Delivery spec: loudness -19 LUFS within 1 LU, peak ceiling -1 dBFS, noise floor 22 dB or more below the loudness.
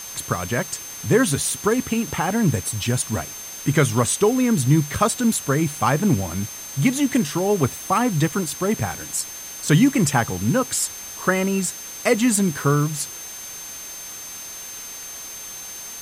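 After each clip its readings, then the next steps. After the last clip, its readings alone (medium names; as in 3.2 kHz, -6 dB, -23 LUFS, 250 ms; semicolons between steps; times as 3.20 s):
steady tone 6.3 kHz; tone level -35 dBFS; noise floor -36 dBFS; noise floor target -43 dBFS; loudness -21.0 LUFS; peak level -5.0 dBFS; loudness target -19.0 LUFS
-> band-stop 6.3 kHz, Q 30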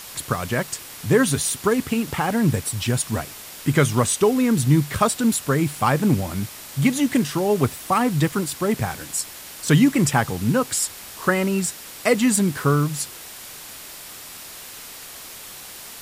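steady tone not found; noise floor -39 dBFS; noise floor target -44 dBFS
-> noise reduction 6 dB, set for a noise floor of -39 dBFS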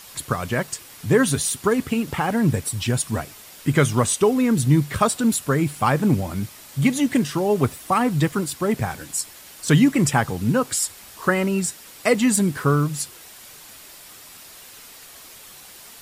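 noise floor -44 dBFS; loudness -21.5 LUFS; peak level -5.0 dBFS; loudness target -19.0 LUFS
-> trim +2.5 dB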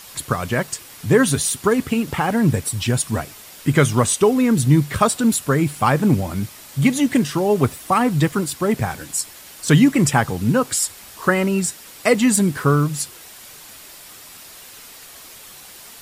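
loudness -19.0 LUFS; peak level -2.5 dBFS; noise floor -41 dBFS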